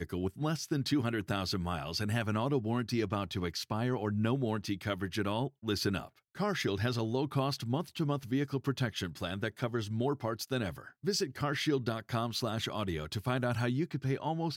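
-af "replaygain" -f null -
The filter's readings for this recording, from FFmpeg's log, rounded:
track_gain = +15.2 dB
track_peak = 0.085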